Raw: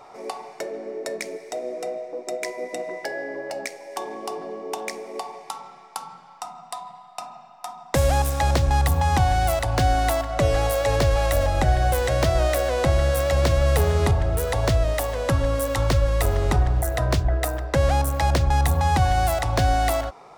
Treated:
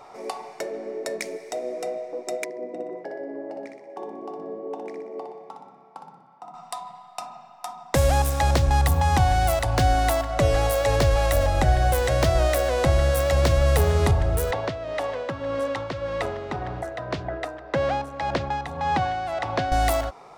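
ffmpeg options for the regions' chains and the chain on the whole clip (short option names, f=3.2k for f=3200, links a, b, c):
-filter_complex "[0:a]asettb=1/sr,asplit=3[a][b][c];[a]atrim=end=2.444[d];[b]atrim=start=2.44:end=6.54,asetpts=PTS-STARTPTS,afade=t=in:d=0.004:c=qsin,afade=t=out:st=4.096:d=0.004:c=qsin,bandpass=f=280:t=q:w=0.76,aecho=1:1:61|122|183|244|305|366:0.562|0.27|0.13|0.0622|0.0299|0.0143,atrim=end_sample=180810[e];[c]atrim=start=6.536[f];[d][e]acrossfade=d=0.004:c1=hsin:c2=qsin[g];[g][f]acrossfade=d=0.004:c1=qsin:c2=hsin,asettb=1/sr,asplit=3[h][i][j];[h]atrim=end=14.514[k];[i]atrim=start=14.51:end=19.72,asetpts=PTS-STARTPTS,afade=t=in:d=0.004:c=qsin,afade=t=out:st=5.206:d=0.004:c=qsin,highpass=180,lowpass=3.6k,tremolo=f=1.8:d=0.53[l];[j]atrim=start=19.716[m];[k][l]acrossfade=d=0.004:c1=hsin:c2=qsin[n];[n][m]acrossfade=d=0.004:c1=qsin:c2=hsin"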